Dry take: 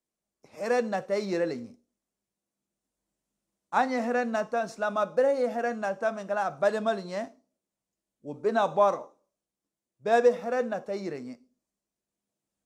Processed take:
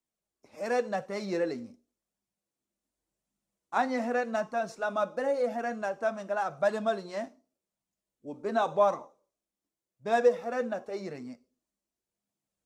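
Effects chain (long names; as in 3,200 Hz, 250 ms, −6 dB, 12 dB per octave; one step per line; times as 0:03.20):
flanger 0.89 Hz, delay 0.8 ms, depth 2.9 ms, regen −46%
level +1.5 dB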